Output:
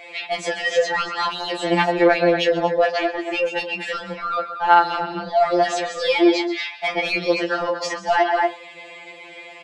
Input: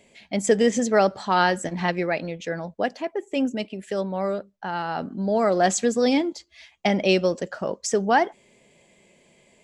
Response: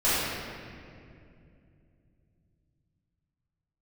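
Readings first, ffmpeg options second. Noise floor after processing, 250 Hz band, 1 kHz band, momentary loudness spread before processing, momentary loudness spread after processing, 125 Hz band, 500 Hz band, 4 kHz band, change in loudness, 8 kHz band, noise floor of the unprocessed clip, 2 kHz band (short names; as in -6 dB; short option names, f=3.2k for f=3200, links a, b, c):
-41 dBFS, +0.5 dB, +5.5 dB, 11 LU, 11 LU, -3.0 dB, +3.0 dB, +6.5 dB, +3.5 dB, -6.0 dB, -60 dBFS, +6.5 dB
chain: -filter_complex "[0:a]asplit=2[a][b];[b]acompressor=threshold=-27dB:ratio=6,volume=0dB[c];[a][c]amix=inputs=2:normalize=0,highpass=410,aecho=1:1:130|234:0.15|0.168,acrusher=bits=10:mix=0:aa=0.000001,acrossover=split=2700|6700[d][e][f];[d]acompressor=threshold=-25dB:ratio=4[g];[e]acompressor=threshold=-36dB:ratio=4[h];[f]acompressor=threshold=-42dB:ratio=4[i];[g][h][i]amix=inputs=3:normalize=0,aresample=22050,aresample=44100,highshelf=f=5.3k:t=q:w=1.5:g=-8,asplit=2[j][k];[k]adelay=24,volume=-13.5dB[l];[j][l]amix=inputs=2:normalize=0,asplit=2[m][n];[n]highpass=f=720:p=1,volume=12dB,asoftclip=type=tanh:threshold=-11.5dB[o];[m][o]amix=inputs=2:normalize=0,lowpass=f=2k:p=1,volume=-6dB,alimiter=level_in=19.5dB:limit=-1dB:release=50:level=0:latency=1,afftfilt=real='re*2.83*eq(mod(b,8),0)':imag='im*2.83*eq(mod(b,8),0)':win_size=2048:overlap=0.75,volume=-7.5dB"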